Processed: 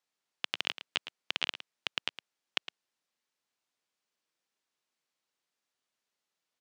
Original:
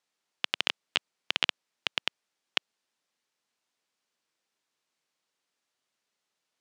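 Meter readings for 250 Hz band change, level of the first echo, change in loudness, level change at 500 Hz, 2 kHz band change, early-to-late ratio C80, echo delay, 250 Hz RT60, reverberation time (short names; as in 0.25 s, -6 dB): -4.0 dB, -13.0 dB, -4.5 dB, -4.5 dB, -4.5 dB, none, 0.111 s, none, none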